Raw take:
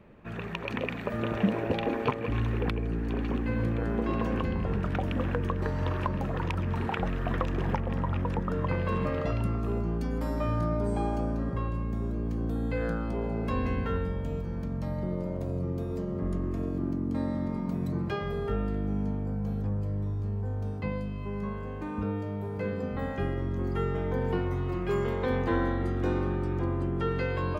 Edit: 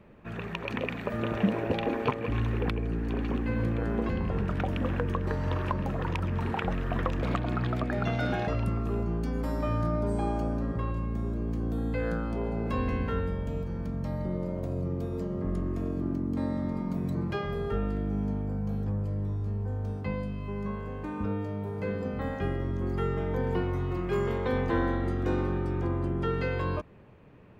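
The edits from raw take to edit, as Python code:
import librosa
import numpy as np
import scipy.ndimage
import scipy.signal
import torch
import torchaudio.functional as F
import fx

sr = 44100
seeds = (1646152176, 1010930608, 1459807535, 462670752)

y = fx.edit(x, sr, fx.cut(start_s=4.09, length_s=0.35),
    fx.speed_span(start_s=7.57, length_s=1.68, speed=1.34), tone=tone)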